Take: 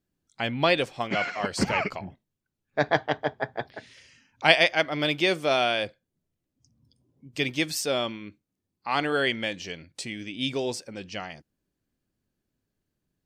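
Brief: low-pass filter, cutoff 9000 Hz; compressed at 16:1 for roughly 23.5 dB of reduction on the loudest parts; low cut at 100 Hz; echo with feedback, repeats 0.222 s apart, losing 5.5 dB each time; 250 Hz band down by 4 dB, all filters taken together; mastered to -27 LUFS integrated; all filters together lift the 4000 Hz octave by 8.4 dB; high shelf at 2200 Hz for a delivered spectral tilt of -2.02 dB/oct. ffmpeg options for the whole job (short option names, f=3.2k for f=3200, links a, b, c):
-af "highpass=100,lowpass=9k,equalizer=f=250:t=o:g=-5.5,highshelf=f=2.2k:g=5.5,equalizer=f=4k:t=o:g=6,acompressor=threshold=-31dB:ratio=16,aecho=1:1:222|444|666|888|1110|1332|1554:0.531|0.281|0.149|0.079|0.0419|0.0222|0.0118,volume=8dB"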